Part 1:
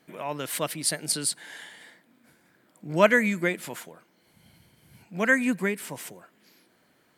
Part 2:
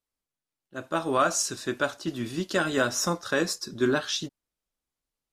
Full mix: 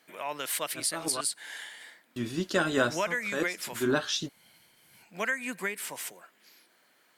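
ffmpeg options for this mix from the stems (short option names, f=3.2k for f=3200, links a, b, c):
-filter_complex "[0:a]highpass=f=1k:p=1,acompressor=threshold=-30dB:ratio=5,volume=2.5dB,asplit=2[a][b];[1:a]volume=-1dB,asplit=3[c][d][e];[c]atrim=end=1.21,asetpts=PTS-STARTPTS,afade=t=out:st=1.206:d=0.004:c=hsin[f];[d]atrim=start=1.21:end=2.16,asetpts=PTS-STARTPTS,volume=0[g];[e]atrim=start=2.16,asetpts=PTS-STARTPTS,afade=t=in:d=0.004:c=hsin[h];[f][g][h]concat=n=3:v=0:a=1[i];[b]apad=whole_len=234874[j];[i][j]sidechaincompress=threshold=-40dB:ratio=8:attack=6.7:release=161[k];[a][k]amix=inputs=2:normalize=0"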